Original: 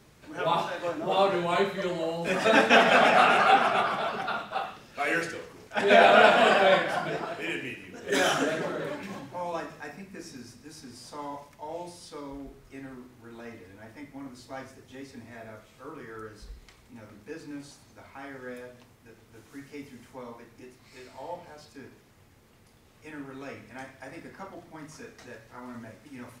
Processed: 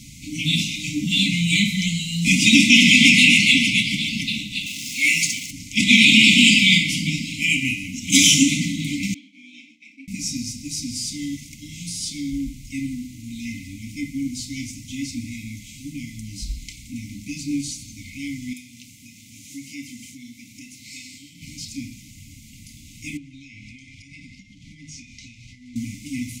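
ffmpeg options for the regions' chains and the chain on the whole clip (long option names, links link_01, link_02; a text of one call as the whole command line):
ffmpeg -i in.wav -filter_complex "[0:a]asettb=1/sr,asplit=3[link_01][link_02][link_03];[link_01]atrim=end=4.664[link_04];[link_02]atrim=start=4.66:end=5.51,asetpts=PTS-STARTPTS,afade=type=in:duration=0.004:curve=qsin,afade=type=out:start_time=0.846:duration=0.004:curve=qsin,aeval=exprs='val(0)+0.5*0.00708*sgn(val(0))':channel_layout=same,highpass=frequency=400:poles=1[link_05];[link_03]atrim=start=5.506[link_06];[link_04][link_05]acrossfade=duration=0.004:curve1=hsin:curve2=qsin[link_07];[link_07][link_06]acrossfade=duration=0.004:curve1=qsin:curve2=hsin,asettb=1/sr,asplit=3[link_08][link_09][link_10];[link_08]atrim=end=9.144[link_11];[link_09]atrim=start=9.14:end=10.08,asetpts=PTS-STARTPTS,afade=type=in:duration=0.004:curve=qsin,afade=type=out:start_time=0.936:duration=0.004:curve=qsin,agate=range=-33dB:threshold=-43dB:ratio=3:release=100:detection=peak,asplit=3[link_12][link_13][link_14];[link_12]bandpass=frequency=270:width_type=q:width=8,volume=0dB[link_15];[link_13]bandpass=frequency=2290:width_type=q:width=8,volume=-6dB[link_16];[link_14]bandpass=frequency=3010:width_type=q:width=8,volume=-9dB[link_17];[link_15][link_16][link_17]amix=inputs=3:normalize=0,afreqshift=73[link_18];[link_10]atrim=start=10.076[link_19];[link_11][link_18]acrossfade=duration=0.004:curve1=hsin:curve2=qsin[link_20];[link_20][link_19]acrossfade=duration=0.004:curve1=qsin:curve2=hsin,asettb=1/sr,asplit=3[link_21][link_22][link_23];[link_21]atrim=end=18.534[link_24];[link_22]atrim=start=18.53:end=21.42,asetpts=PTS-STARTPTS,afade=type=in:duration=0.004:curve=qsin,afade=type=out:start_time=2.886:duration=0.004:curve=qsin,acompressor=threshold=-53dB:ratio=1.5:attack=3.2:release=140:knee=1:detection=peak,highpass=frequency=260:poles=1[link_25];[link_23]atrim=start=21.416[link_26];[link_24][link_25]acrossfade=duration=0.004:curve1=hsin:curve2=qsin[link_27];[link_27][link_26]acrossfade=duration=0.004:curve1=qsin:curve2=hsin,asettb=1/sr,asplit=3[link_28][link_29][link_30];[link_28]atrim=end=23.174[link_31];[link_29]atrim=start=23.17:end=25.76,asetpts=PTS-STARTPTS,afade=type=in:duration=0.004:curve=qsin,afade=type=out:start_time=2.586:duration=0.004:curve=qsin,lowpass=4600,equalizer=frequency=310:width=0.66:gain=-7.5,acompressor=threshold=-51dB:ratio=10:attack=3.2:release=140:knee=1:detection=peak[link_32];[link_30]atrim=start=25.756[link_33];[link_31][link_32]acrossfade=duration=0.004:curve1=hsin:curve2=qsin[link_34];[link_34][link_33]acrossfade=duration=0.004:curve1=qsin:curve2=hsin,equalizer=frequency=6900:width_type=o:width=0.7:gain=8,afftfilt=real='re*(1-between(b*sr/4096,310,2000))':imag='im*(1-between(b*sr/4096,310,2000))':win_size=4096:overlap=0.75,alimiter=level_in=16.5dB:limit=-1dB:release=50:level=0:latency=1,volume=-1dB" out.wav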